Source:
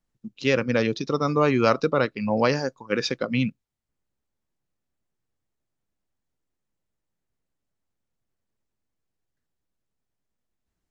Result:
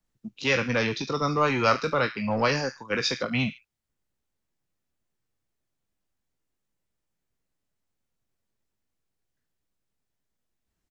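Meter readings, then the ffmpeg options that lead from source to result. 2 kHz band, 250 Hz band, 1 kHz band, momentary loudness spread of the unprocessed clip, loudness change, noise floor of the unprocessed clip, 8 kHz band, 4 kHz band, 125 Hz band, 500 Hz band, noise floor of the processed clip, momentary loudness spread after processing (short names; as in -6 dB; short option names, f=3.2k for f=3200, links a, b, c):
+2.0 dB, -4.5 dB, +0.5 dB, 7 LU, -2.0 dB, -82 dBFS, n/a, +2.0 dB, -2.5 dB, -4.0 dB, -82 dBFS, 6 LU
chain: -filter_complex "[0:a]acrossover=split=140|650|1200[a][b][c][d];[b]asoftclip=type=tanh:threshold=-27.5dB[e];[d]aecho=1:1:20|44|72.8|107.4|148.8:0.631|0.398|0.251|0.158|0.1[f];[a][e][c][f]amix=inputs=4:normalize=0"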